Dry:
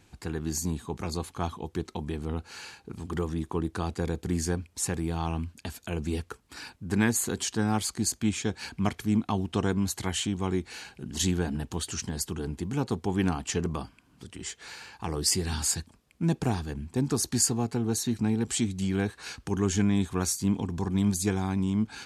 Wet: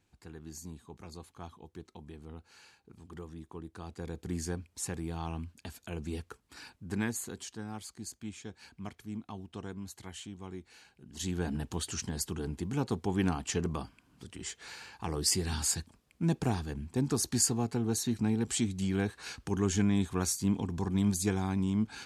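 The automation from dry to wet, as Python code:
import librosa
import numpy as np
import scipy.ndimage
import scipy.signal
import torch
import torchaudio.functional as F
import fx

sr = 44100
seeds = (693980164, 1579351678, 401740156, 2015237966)

y = fx.gain(x, sr, db=fx.line((3.73, -14.5), (4.31, -7.0), (6.89, -7.0), (7.66, -15.0), (11.05, -15.0), (11.48, -3.0)))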